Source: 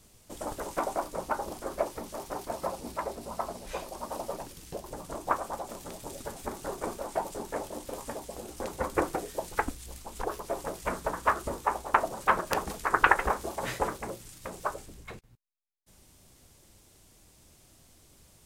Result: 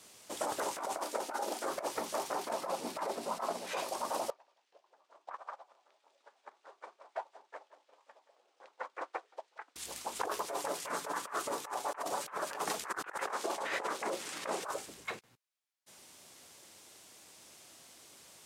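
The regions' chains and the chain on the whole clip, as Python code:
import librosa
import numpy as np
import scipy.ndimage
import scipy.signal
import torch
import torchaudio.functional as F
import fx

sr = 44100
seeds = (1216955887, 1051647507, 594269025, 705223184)

y = fx.chain(x, sr, fx.brickwall_highpass(low_hz=190.0),
    fx.notch(hz=1100.0, q=5.9), at=(1.03, 1.64))
y = fx.chain(y, sr, fx.highpass(hz=180.0, slope=12),
    fx.bass_treble(bass_db=6, treble_db=-3), at=(2.37, 3.77))
y = fx.chain(y, sr, fx.bandpass_edges(low_hz=580.0, high_hz=3900.0),
    fx.echo_single(ms=176, db=-9.0),
    fx.upward_expand(threshold_db=-42.0, expansion=2.5), at=(4.3, 9.76))
y = fx.chain(y, sr, fx.highpass(hz=140.0, slope=6),
    fx.comb(ms=6.9, depth=0.35), at=(10.46, 12.73))
y = fx.chain(y, sr, fx.highpass(hz=230.0, slope=12),
    fx.high_shelf(hz=10000.0, db=-9.5),
    fx.band_squash(depth_pct=100), at=(13.23, 14.64))
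y = fx.weighting(y, sr, curve='A')
y = fx.over_compress(y, sr, threshold_db=-38.0, ratio=-1.0)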